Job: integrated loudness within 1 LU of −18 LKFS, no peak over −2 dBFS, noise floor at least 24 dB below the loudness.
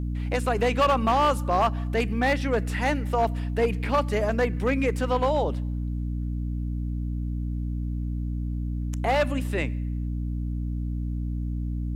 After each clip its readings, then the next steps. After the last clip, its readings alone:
share of clipped samples 0.9%; peaks flattened at −15.5 dBFS; mains hum 60 Hz; hum harmonics up to 300 Hz; level of the hum −26 dBFS; integrated loudness −26.5 LKFS; sample peak −15.5 dBFS; target loudness −18.0 LKFS
→ clipped peaks rebuilt −15.5 dBFS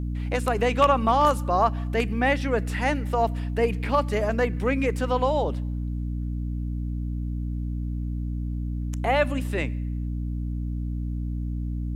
share of clipped samples 0.0%; mains hum 60 Hz; hum harmonics up to 300 Hz; level of the hum −26 dBFS
→ hum removal 60 Hz, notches 5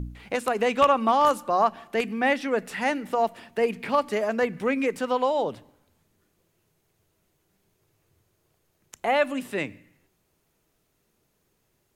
mains hum none found; integrated loudness −25.0 LKFS; sample peak −6.5 dBFS; target loudness −18.0 LKFS
→ level +7 dB
brickwall limiter −2 dBFS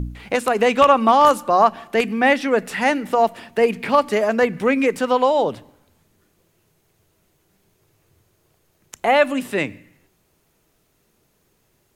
integrated loudness −18.0 LKFS; sample peak −2.0 dBFS; background noise floor −65 dBFS

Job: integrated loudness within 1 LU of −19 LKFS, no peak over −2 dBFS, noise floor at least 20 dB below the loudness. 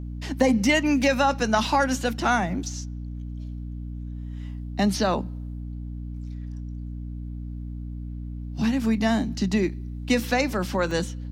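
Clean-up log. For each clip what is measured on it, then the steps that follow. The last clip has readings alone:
number of dropouts 2; longest dropout 1.1 ms; mains hum 60 Hz; hum harmonics up to 300 Hz; level of the hum −31 dBFS; integrated loudness −24.5 LKFS; sample peak −6.5 dBFS; target loudness −19.0 LKFS
→ repair the gap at 0:01.65/0:10.91, 1.1 ms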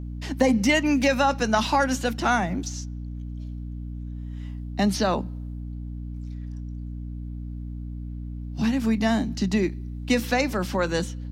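number of dropouts 0; mains hum 60 Hz; hum harmonics up to 300 Hz; level of the hum −31 dBFS
→ mains-hum notches 60/120/180/240/300 Hz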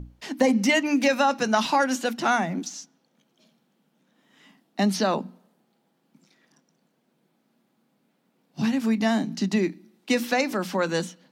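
mains hum none found; integrated loudness −24.0 LKFS; sample peak −7.5 dBFS; target loudness −19.0 LKFS
→ level +5 dB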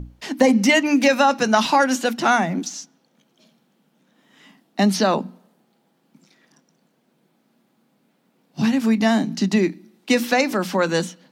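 integrated loudness −19.0 LKFS; sample peak −2.5 dBFS; background noise floor −66 dBFS

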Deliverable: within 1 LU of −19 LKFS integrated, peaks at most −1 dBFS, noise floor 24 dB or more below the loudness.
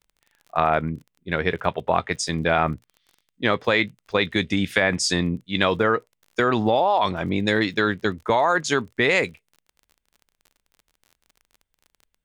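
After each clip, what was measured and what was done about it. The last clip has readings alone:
crackle rate 33 per second; integrated loudness −22.5 LKFS; sample peak −3.0 dBFS; target loudness −19.0 LKFS
→ click removal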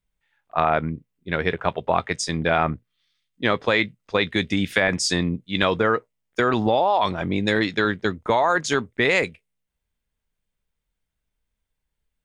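crackle rate 0 per second; integrated loudness −22.5 LKFS; sample peak −3.0 dBFS; target loudness −19.0 LKFS
→ level +3.5 dB
brickwall limiter −1 dBFS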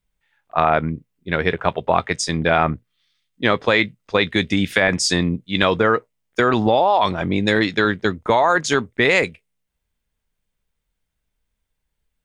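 integrated loudness −19.0 LKFS; sample peak −1.0 dBFS; background noise floor −78 dBFS

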